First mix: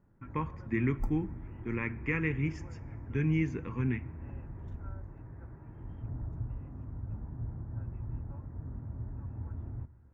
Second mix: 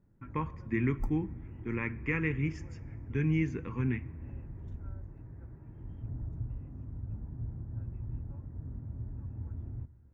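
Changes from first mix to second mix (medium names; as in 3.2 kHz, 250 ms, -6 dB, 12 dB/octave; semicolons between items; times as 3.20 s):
first sound: add peaking EQ 1.1 kHz -8 dB 2.1 oct; second sound: send -7.5 dB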